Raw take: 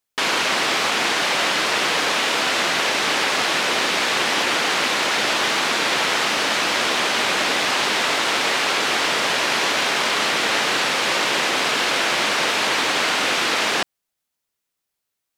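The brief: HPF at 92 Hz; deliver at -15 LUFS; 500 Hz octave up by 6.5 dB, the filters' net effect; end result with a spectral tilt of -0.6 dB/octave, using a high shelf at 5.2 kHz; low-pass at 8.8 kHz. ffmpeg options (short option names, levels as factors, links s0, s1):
-af "highpass=92,lowpass=8800,equalizer=f=500:t=o:g=8,highshelf=f=5200:g=5,volume=1.19"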